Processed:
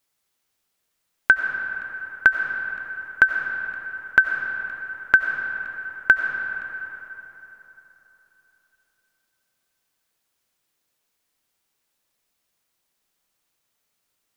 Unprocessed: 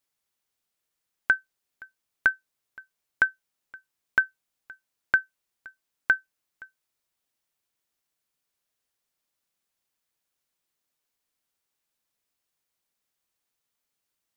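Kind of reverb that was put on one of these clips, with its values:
comb and all-pass reverb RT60 3.7 s, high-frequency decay 0.6×, pre-delay 50 ms, DRR 4 dB
level +6.5 dB

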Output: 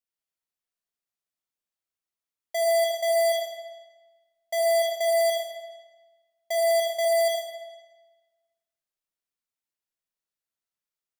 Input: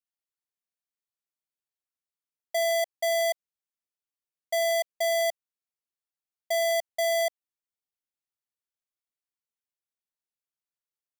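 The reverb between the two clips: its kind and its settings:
comb and all-pass reverb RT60 1.3 s, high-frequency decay 0.9×, pre-delay 20 ms, DRR −0.5 dB
level −1.5 dB

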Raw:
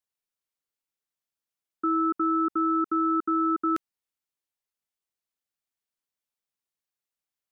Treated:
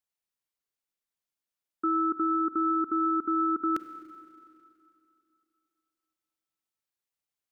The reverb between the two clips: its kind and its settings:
four-comb reverb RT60 2.7 s, combs from 32 ms, DRR 10.5 dB
level −1.5 dB

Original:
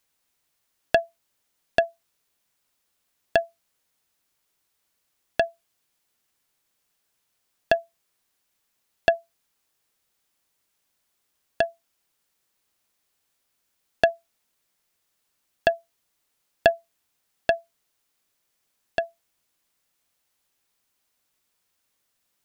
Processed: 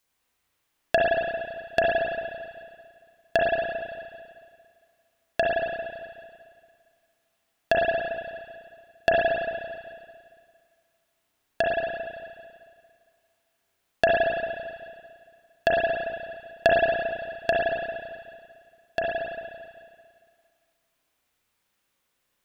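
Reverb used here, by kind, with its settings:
spring reverb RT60 2 s, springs 33/56 ms, chirp 60 ms, DRR −4.5 dB
level −2.5 dB

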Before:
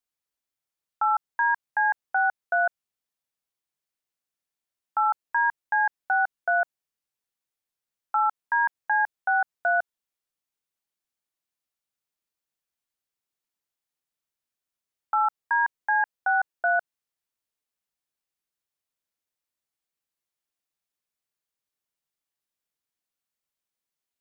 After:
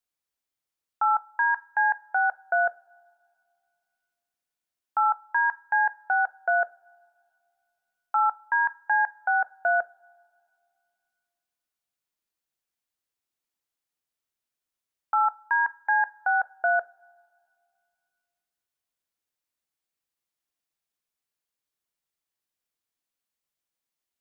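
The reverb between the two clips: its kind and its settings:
coupled-rooms reverb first 0.26 s, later 2.3 s, from −22 dB, DRR 15.5 dB

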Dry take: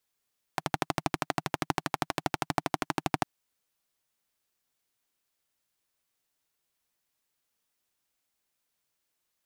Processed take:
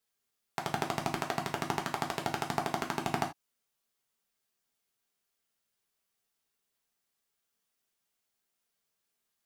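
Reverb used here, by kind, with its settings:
reverb whose tail is shaped and stops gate 110 ms falling, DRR 1.5 dB
level −4 dB

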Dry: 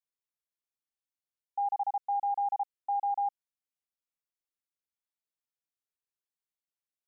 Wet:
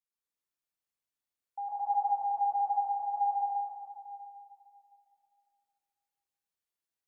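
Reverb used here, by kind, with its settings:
dense smooth reverb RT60 2.6 s, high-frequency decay 0.75×, pre-delay 105 ms, DRR −8.5 dB
level −7 dB

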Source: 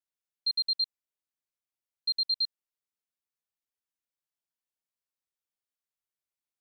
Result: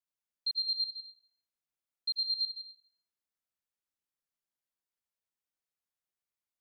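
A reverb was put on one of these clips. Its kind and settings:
dense smooth reverb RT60 1.8 s, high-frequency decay 0.3×, pre-delay 80 ms, DRR 1 dB
level −4 dB

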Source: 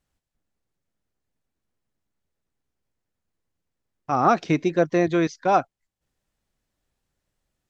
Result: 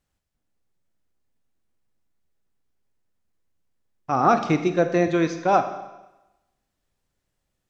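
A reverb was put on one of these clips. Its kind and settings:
four-comb reverb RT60 1 s, combs from 30 ms, DRR 8 dB

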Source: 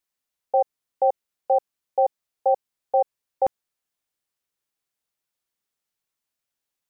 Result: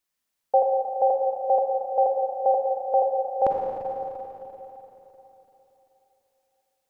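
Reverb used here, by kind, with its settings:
four-comb reverb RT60 3.6 s, DRR −1 dB
level +1.5 dB

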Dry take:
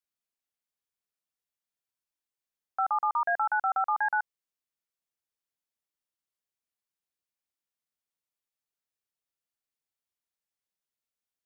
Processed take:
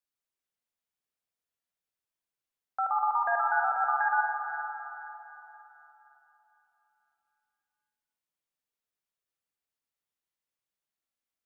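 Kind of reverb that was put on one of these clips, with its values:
spring reverb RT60 3.6 s, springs 50/56 ms, chirp 60 ms, DRR 1 dB
level −2 dB

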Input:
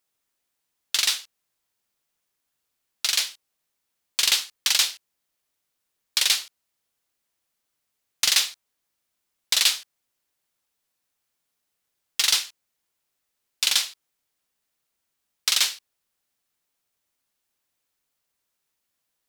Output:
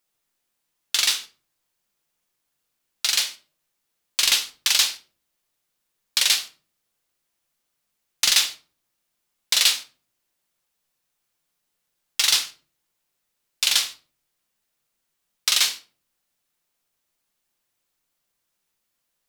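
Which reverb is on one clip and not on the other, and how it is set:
rectangular room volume 270 cubic metres, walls furnished, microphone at 0.86 metres
level +1 dB

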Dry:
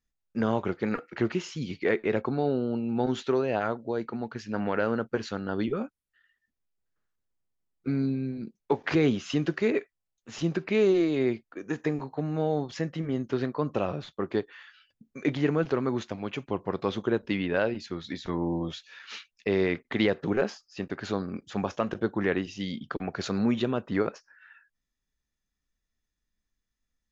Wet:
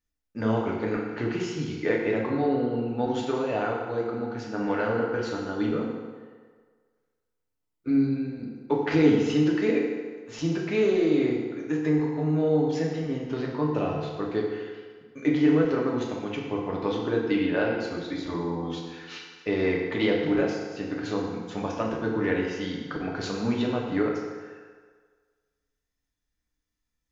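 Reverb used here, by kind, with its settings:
feedback delay network reverb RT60 1.6 s, low-frequency decay 0.8×, high-frequency decay 0.75×, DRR −2.5 dB
level −3 dB

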